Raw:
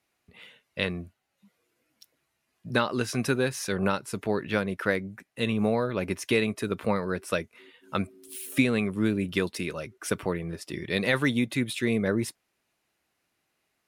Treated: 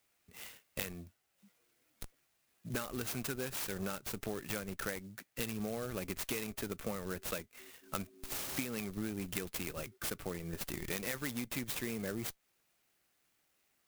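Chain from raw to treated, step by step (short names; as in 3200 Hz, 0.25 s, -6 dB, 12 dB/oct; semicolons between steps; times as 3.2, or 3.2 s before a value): high shelf 2300 Hz +11.5 dB; notch 980 Hz, Q 6; in parallel at -9.5 dB: Schmitt trigger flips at -26.5 dBFS; on the sum: compressor 6:1, threshold -30 dBFS, peak gain reduction 15 dB; clock jitter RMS 0.065 ms; gain -5.5 dB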